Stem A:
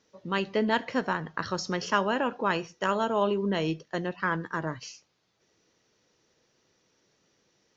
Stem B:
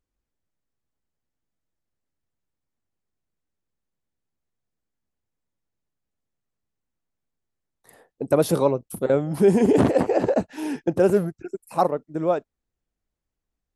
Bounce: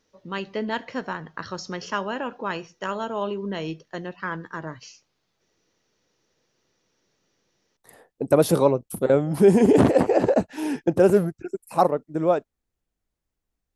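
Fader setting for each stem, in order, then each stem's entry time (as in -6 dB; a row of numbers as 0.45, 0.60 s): -2.0, +1.5 dB; 0.00, 0.00 s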